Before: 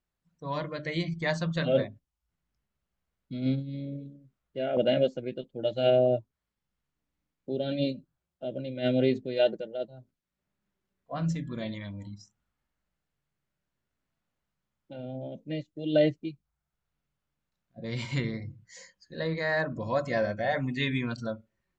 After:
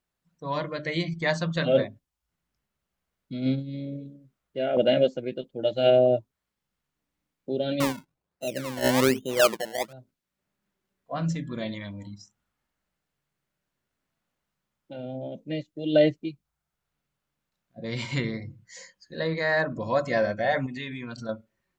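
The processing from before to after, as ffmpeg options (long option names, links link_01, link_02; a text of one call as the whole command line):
ffmpeg -i in.wav -filter_complex "[0:a]asettb=1/sr,asplit=3[link_01][link_02][link_03];[link_01]atrim=end=7.804[link_04];[link_02]atrim=start=7.8:end=9.93,asetpts=PTS-STARTPTS,afade=type=in:duration=0.004:curve=qsin,afade=type=out:start_time=2.126:duration=0.004:curve=qsin,acrusher=samples=25:mix=1:aa=0.000001:lfo=1:lforange=25:lforate=1.2[link_05];[link_03]atrim=start=9.926[link_06];[link_04][link_05]acrossfade=duration=0.004:curve1=hsin:curve2=qsin[link_07];[link_07][link_06]acrossfade=duration=0.004:curve1=qsin:curve2=hsin,asettb=1/sr,asplit=3[link_08][link_09][link_10];[link_08]atrim=end=20.664[link_11];[link_09]atrim=start=20.66:end=21.29,asetpts=PTS-STARTPTS,afade=type=in:duration=0.004:curve=qsin,afade=type=out:start_time=0.626:duration=0.004:curve=qsin,acompressor=threshold=-35dB:ratio=6:attack=3.2:release=140:knee=1:detection=peak[link_12];[link_10]atrim=start=21.286[link_13];[link_11][link_12]acrossfade=duration=0.004:curve1=hsin:curve2=qsin[link_14];[link_14][link_13]acrossfade=duration=0.004:curve1=qsin:curve2=hsin,lowshelf=frequency=120:gain=-7.5,volume=4dB" out.wav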